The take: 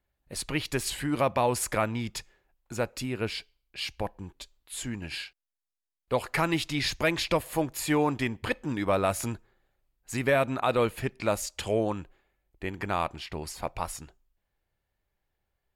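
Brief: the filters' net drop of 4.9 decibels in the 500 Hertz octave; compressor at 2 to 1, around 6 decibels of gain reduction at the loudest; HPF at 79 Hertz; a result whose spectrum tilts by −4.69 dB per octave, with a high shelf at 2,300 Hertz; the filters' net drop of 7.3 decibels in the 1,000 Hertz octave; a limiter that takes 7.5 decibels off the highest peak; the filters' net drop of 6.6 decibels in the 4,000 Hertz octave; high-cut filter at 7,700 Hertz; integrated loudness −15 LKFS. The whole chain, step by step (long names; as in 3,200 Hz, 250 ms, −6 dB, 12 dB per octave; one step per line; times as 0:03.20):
high-pass filter 79 Hz
low-pass filter 7,700 Hz
parametric band 500 Hz −3.5 dB
parametric band 1,000 Hz −7.5 dB
high-shelf EQ 2,300 Hz −4.5 dB
parametric band 4,000 Hz −3.5 dB
downward compressor 2 to 1, threshold −35 dBFS
level +26 dB
brickwall limiter −3 dBFS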